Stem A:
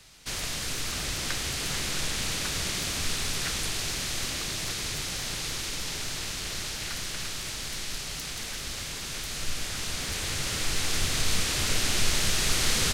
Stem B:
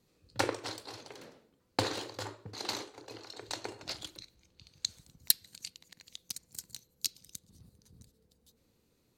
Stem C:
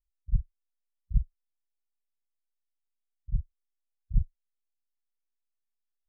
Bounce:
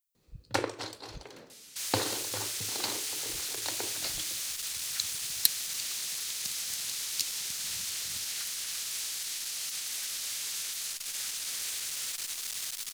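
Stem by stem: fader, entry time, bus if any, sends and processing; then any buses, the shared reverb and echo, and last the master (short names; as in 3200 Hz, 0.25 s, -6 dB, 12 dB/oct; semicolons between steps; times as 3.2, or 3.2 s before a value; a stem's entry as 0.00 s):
-8.0 dB, 1.50 s, bus A, no send, soft clip -29 dBFS, distortion -8 dB
+1.0 dB, 0.15 s, no bus, no send, dry
-3.5 dB, 0.00 s, bus A, no send, dry
bus A: 0.0 dB, tilt +4.5 dB/oct; limiter -25.5 dBFS, peak gain reduction 7 dB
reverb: off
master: dry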